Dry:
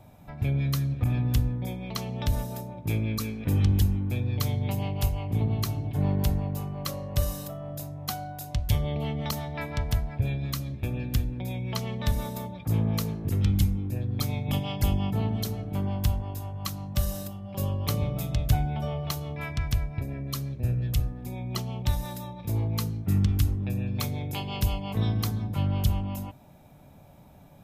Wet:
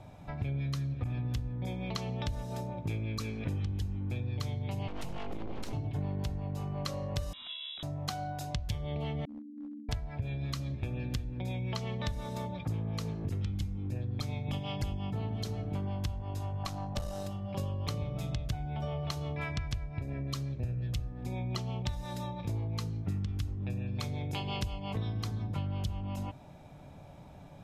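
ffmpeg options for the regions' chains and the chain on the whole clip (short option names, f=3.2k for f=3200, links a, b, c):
-filter_complex "[0:a]asettb=1/sr,asplit=3[a][b][c];[a]atrim=end=4.884[d];[b]atrim=start=4.88:end=5.73,asetpts=PTS-STARTPTS,afade=t=in:d=0.004:c=qsin,afade=t=out:st=0.846:d=0.004:c=qsin,highpass=f=98:p=1,acompressor=threshold=-30dB:ratio=6:attack=3.2:release=140:knee=1:detection=peak,aeval=exprs='abs(val(0))':c=same[e];[c]atrim=start=5.726[f];[d][e]acrossfade=d=0.004:c1=hsin:c2=qsin[g];[g][f]acrossfade=d=0.004:c1=qsin:c2=hsin,asettb=1/sr,asplit=3[h][i][j];[h]atrim=end=7.334[k];[i]atrim=start=7.33:end=7.83,asetpts=PTS-STARTPTS,afade=t=in:d=0.004:c=qsin,afade=t=out:st=0.496:d=0.004:c=qsin,highpass=f=690:p=1,lowpass=f=3.4k:t=q:w=0.5098,lowpass=f=3.4k:t=q:w=0.6013,lowpass=f=3.4k:t=q:w=0.9,lowpass=f=3.4k:t=q:w=2.563,afreqshift=-4000[l];[j]atrim=start=7.826[m];[k][l]acrossfade=d=0.004:c1=hsin:c2=qsin[n];[n][m]acrossfade=d=0.004:c1=qsin:c2=hsin,asettb=1/sr,asplit=3[o][p][q];[o]atrim=end=9.254[r];[p]atrim=start=9.25:end=9.89,asetpts=PTS-STARTPTS,afade=t=in:d=0.004:c=qsin,afade=t=out:st=0.636:d=0.004:c=qsin,asuperpass=centerf=260:order=12:qfactor=3,aeval=exprs='clip(val(0),-1,0.0112)':c=same[s];[q]atrim=start=9.886[t];[r][s]acrossfade=d=0.004:c1=hsin:c2=qsin[u];[u][t]acrossfade=d=0.004:c1=qsin:c2=hsin,asettb=1/sr,asplit=3[v][w][x];[v]atrim=end=16.634[y];[w]atrim=start=16.63:end=17.27,asetpts=PTS-STARTPTS,afade=t=in:d=0.004:c=qsin,afade=t=out:st=0.636:d=0.004:c=qsin,equalizer=f=750:w=1.6:g=9.5,aeval=exprs='(tanh(12.6*val(0)+0.6)-tanh(0.6))/12.6':c=same[z];[x]atrim=start=17.266[aa];[y][z]acrossfade=d=0.004:c1=hsin:c2=qsin[ab];[ab][aa]acrossfade=d=0.004:c1=qsin:c2=hsin,lowpass=6.8k,equalizer=f=220:w=5.3:g=-4.5,acompressor=threshold=-34dB:ratio=6,volume=2dB"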